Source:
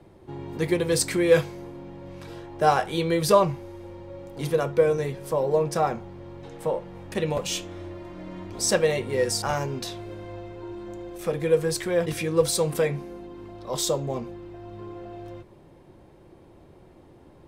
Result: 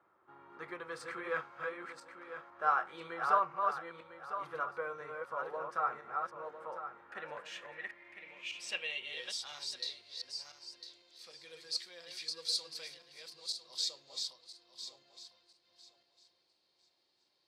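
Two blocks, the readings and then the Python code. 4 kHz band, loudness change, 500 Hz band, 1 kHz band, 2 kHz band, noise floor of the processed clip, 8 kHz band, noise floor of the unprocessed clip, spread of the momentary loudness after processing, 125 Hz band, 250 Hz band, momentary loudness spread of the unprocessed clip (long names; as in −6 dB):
−5.0 dB, −13.5 dB, −21.0 dB, −7.0 dB, −7.0 dB, −77 dBFS, −16.5 dB, −52 dBFS, 17 LU, −33.0 dB, −26.5 dB, 19 LU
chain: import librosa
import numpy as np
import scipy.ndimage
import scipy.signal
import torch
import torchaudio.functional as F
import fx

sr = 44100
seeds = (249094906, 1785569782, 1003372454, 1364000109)

y = fx.reverse_delay_fb(x, sr, ms=501, feedback_pct=44, wet_db=-3.5)
y = fx.filter_sweep_bandpass(y, sr, from_hz=1300.0, to_hz=4500.0, start_s=6.9, end_s=10.03, q=6.5)
y = y * librosa.db_to_amplitude(2.0)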